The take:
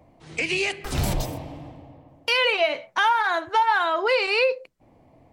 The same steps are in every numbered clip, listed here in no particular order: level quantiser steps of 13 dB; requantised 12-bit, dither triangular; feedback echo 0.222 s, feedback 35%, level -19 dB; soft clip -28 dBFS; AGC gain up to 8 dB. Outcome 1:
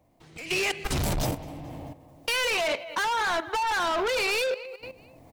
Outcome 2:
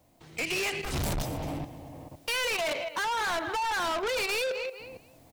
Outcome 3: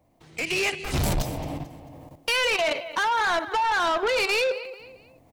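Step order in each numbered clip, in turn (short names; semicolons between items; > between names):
feedback echo > soft clip > requantised > AGC > level quantiser; feedback echo > level quantiser > requantised > AGC > soft clip; requantised > level quantiser > feedback echo > soft clip > AGC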